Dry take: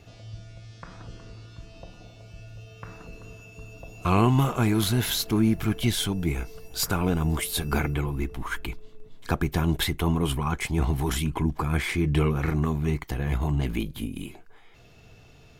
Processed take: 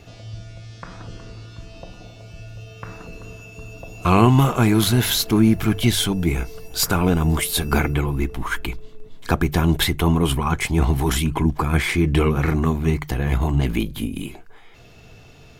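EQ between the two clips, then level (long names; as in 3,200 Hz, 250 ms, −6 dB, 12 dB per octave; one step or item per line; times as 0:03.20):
mains-hum notches 50/100/150 Hz
+6.5 dB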